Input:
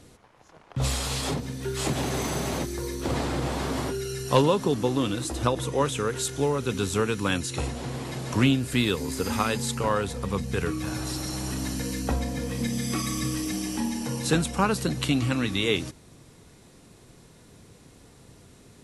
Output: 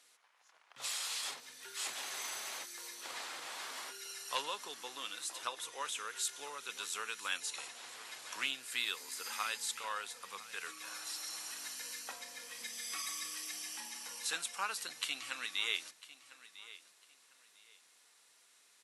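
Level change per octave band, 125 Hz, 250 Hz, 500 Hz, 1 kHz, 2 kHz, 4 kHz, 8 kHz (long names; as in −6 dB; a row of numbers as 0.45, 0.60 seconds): below −40 dB, −35.0 dB, −25.0 dB, −13.0 dB, −7.5 dB, −6.5 dB, −6.5 dB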